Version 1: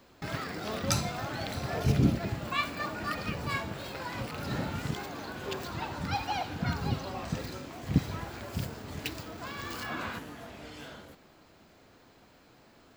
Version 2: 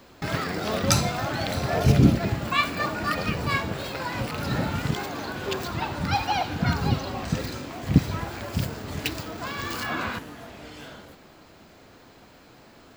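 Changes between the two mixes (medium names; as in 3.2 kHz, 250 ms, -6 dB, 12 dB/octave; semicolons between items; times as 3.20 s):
speech +11.5 dB; first sound +7.5 dB; second sound +3.0 dB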